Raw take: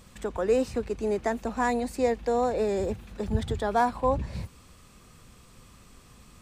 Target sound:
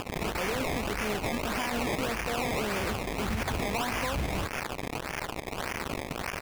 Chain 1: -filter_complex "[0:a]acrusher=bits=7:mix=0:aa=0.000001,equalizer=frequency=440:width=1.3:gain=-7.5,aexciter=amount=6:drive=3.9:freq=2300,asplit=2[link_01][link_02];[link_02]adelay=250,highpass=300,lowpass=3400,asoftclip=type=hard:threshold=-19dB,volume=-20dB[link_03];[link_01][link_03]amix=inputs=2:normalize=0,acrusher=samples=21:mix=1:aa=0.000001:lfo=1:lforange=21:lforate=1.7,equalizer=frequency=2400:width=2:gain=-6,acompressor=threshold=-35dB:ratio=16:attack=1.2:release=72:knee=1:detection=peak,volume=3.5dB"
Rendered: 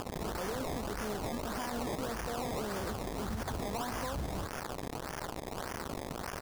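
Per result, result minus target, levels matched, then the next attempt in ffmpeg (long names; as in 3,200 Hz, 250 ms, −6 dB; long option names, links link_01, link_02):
downward compressor: peak gain reduction +5 dB; 2,000 Hz band −4.5 dB
-filter_complex "[0:a]acrusher=bits=7:mix=0:aa=0.000001,equalizer=frequency=440:width=1.3:gain=-7.5,aexciter=amount=6:drive=3.9:freq=2300,asplit=2[link_01][link_02];[link_02]adelay=250,highpass=300,lowpass=3400,asoftclip=type=hard:threshold=-19dB,volume=-20dB[link_03];[link_01][link_03]amix=inputs=2:normalize=0,acrusher=samples=21:mix=1:aa=0.000001:lfo=1:lforange=21:lforate=1.7,equalizer=frequency=2400:width=2:gain=-6,acompressor=threshold=-28.5dB:ratio=16:attack=1.2:release=72:knee=1:detection=peak,volume=3.5dB"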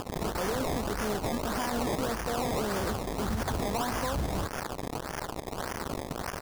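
2,000 Hz band −4.5 dB
-filter_complex "[0:a]acrusher=bits=7:mix=0:aa=0.000001,equalizer=frequency=440:width=1.3:gain=-7.5,aexciter=amount=6:drive=3.9:freq=2300,asplit=2[link_01][link_02];[link_02]adelay=250,highpass=300,lowpass=3400,asoftclip=type=hard:threshold=-19dB,volume=-20dB[link_03];[link_01][link_03]amix=inputs=2:normalize=0,acrusher=samples=21:mix=1:aa=0.000001:lfo=1:lforange=21:lforate=1.7,equalizer=frequency=2400:width=2:gain=6,acompressor=threshold=-28.5dB:ratio=16:attack=1.2:release=72:knee=1:detection=peak,volume=3.5dB"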